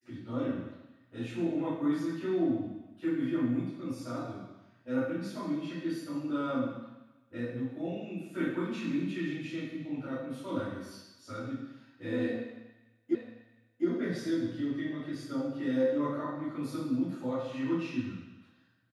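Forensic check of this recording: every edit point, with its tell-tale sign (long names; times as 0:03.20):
0:13.15: the same again, the last 0.71 s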